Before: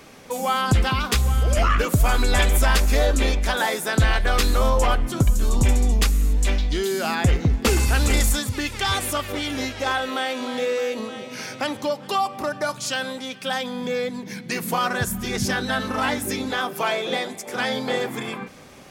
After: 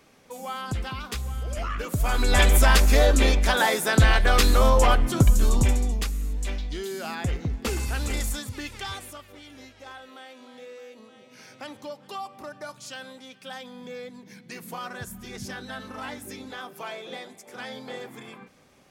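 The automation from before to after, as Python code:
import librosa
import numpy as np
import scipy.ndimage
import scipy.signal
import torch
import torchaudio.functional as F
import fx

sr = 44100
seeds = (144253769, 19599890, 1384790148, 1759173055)

y = fx.gain(x, sr, db=fx.line((1.75, -11.5), (2.43, 1.0), (5.44, 1.0), (6.05, -9.0), (8.75, -9.0), (9.27, -19.5), (10.99, -19.5), (11.69, -13.0)))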